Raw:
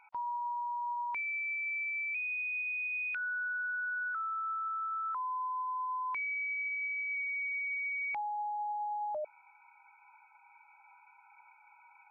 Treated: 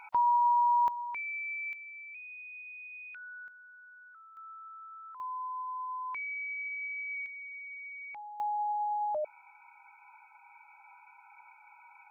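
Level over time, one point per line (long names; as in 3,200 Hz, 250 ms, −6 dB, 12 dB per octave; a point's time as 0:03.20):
+11 dB
from 0:00.88 −1.5 dB
from 0:01.73 −10.5 dB
from 0:03.48 −18.5 dB
from 0:04.37 −12 dB
from 0:05.20 −2 dB
from 0:07.26 −8.5 dB
from 0:08.40 +4 dB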